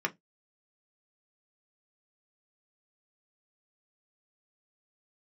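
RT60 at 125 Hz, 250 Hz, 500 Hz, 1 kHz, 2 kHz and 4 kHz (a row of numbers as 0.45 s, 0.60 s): 0.25 s, 0.20 s, 0.15 s, 0.15 s, 0.15 s, 0.15 s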